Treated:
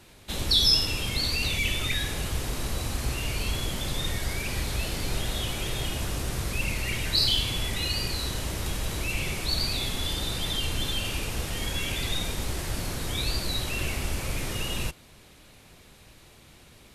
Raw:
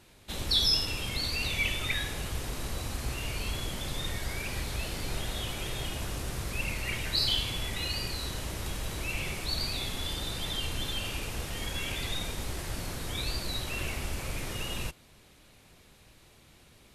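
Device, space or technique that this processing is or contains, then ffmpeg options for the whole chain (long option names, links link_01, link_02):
one-band saturation: -filter_complex "[0:a]acrossover=split=470|2700[link_01][link_02][link_03];[link_02]asoftclip=type=tanh:threshold=-39.5dB[link_04];[link_01][link_04][link_03]amix=inputs=3:normalize=0,volume=5dB"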